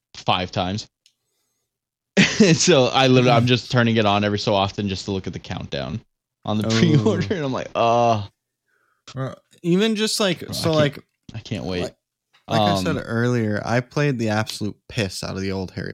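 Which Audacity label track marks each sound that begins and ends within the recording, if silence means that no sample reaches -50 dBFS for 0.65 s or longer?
2.170000	8.290000	sound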